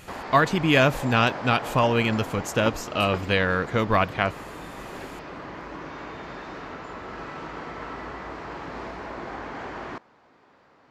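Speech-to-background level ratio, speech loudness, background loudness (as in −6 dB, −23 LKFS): 13.5 dB, −23.0 LKFS, −36.5 LKFS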